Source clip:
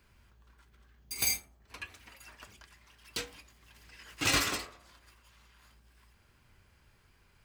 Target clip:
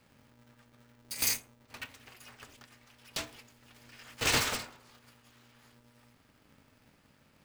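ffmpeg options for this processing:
-af "aeval=exprs='val(0)*sgn(sin(2*PI*180*n/s))':c=same"

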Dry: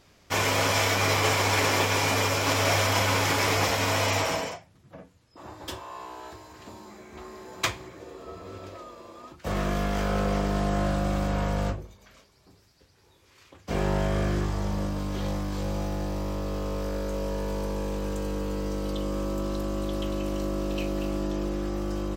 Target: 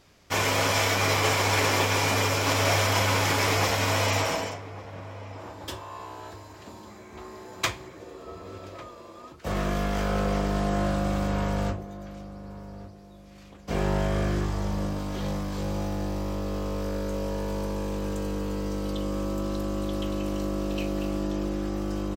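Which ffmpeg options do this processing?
-filter_complex "[0:a]asplit=2[a][b];[b]adelay=1149,lowpass=f=940:p=1,volume=-14dB,asplit=2[c][d];[d]adelay=1149,lowpass=f=940:p=1,volume=0.37,asplit=2[e][f];[f]adelay=1149,lowpass=f=940:p=1,volume=0.37,asplit=2[g][h];[h]adelay=1149,lowpass=f=940:p=1,volume=0.37[i];[a][c][e][g][i]amix=inputs=5:normalize=0"

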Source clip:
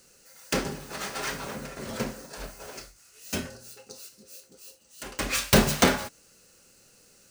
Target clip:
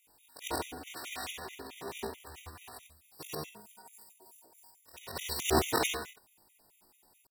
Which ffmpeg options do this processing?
-af "afftfilt=real='re':imag='-im':win_size=8192:overlap=0.75,asetrate=78577,aresample=44100,atempo=0.561231,afftfilt=real='re*gt(sin(2*PI*4.6*pts/sr)*(1-2*mod(floor(b*sr/1024/1900),2)),0)':imag='im*gt(sin(2*PI*4.6*pts/sr)*(1-2*mod(floor(b*sr/1024/1900),2)),0)':win_size=1024:overlap=0.75"

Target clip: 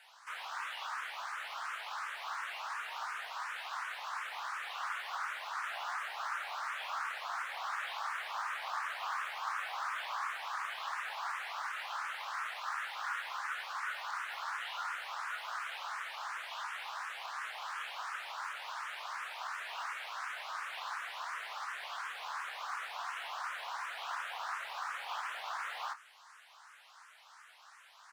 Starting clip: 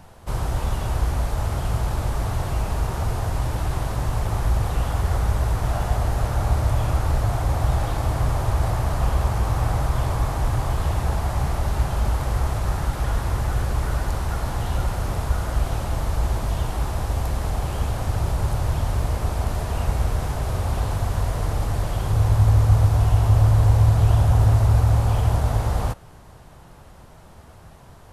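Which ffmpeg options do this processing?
-filter_complex "[0:a]acrossover=split=3600[a][b];[b]acompressor=threshold=-52dB:ratio=4:attack=1:release=60[c];[a][c]amix=inputs=2:normalize=0,highpass=f=1.2k:w=0.5412,highpass=f=1.2k:w=1.3066,adynamicsmooth=sensitivity=2.5:basefreq=7k,acrusher=bits=7:mode=log:mix=0:aa=0.000001,asplit=2[d][e];[e]adelay=27,volume=-11dB[f];[d][f]amix=inputs=2:normalize=0,asplit=2[g][h];[h]afreqshift=2.8[i];[g][i]amix=inputs=2:normalize=1,volume=3dB"

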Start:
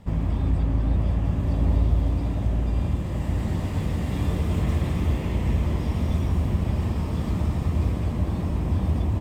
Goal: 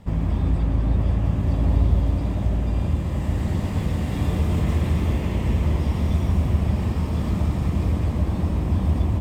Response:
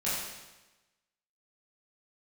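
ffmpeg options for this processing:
-filter_complex "[0:a]asplit=2[a][b];[1:a]atrim=start_sample=2205,adelay=97[c];[b][c]afir=irnorm=-1:irlink=0,volume=-16dB[d];[a][d]amix=inputs=2:normalize=0,volume=1.5dB"

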